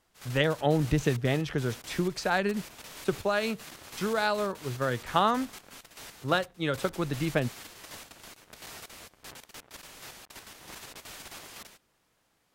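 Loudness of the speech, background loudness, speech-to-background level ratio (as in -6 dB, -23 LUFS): -29.5 LUFS, -45.0 LUFS, 15.5 dB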